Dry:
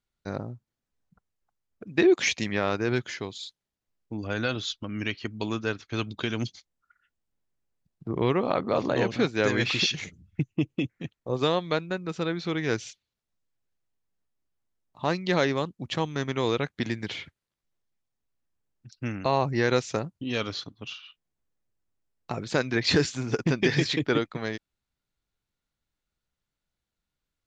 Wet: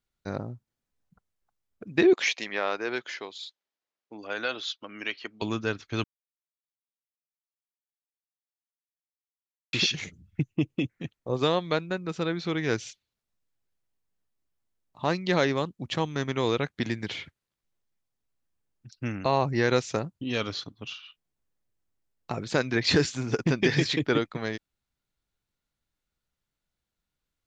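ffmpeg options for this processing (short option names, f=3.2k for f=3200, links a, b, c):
-filter_complex "[0:a]asettb=1/sr,asplit=3[a][b][c];[a]atrim=end=2.134[d];[b]atrim=start=2.13:end=5.42,asetpts=PTS-STARTPTS,afade=t=in:d=0.004:c=qsin,afade=t=out:st=3.286:d=0.004:c=qsin,highpass=460,lowpass=5.4k[e];[c]atrim=start=5.416[f];[d][e]acrossfade=d=0.004:c1=hsin:c2=qsin[g];[g][f]acrossfade=d=0.004:c1=qsin:c2=hsin,asplit=3[h][i][j];[h]atrim=end=6.04,asetpts=PTS-STARTPTS,afade=t=out:st=6.036:d=0.004:c=hsin[k];[i]atrim=start=6.04:end=9.73,asetpts=PTS-STARTPTS,volume=0[l];[j]atrim=start=9.73,asetpts=PTS-STARTPTS,afade=t=in:d=0.004:c=hsin[m];[k][l][m]concat=n=3:v=0:a=1"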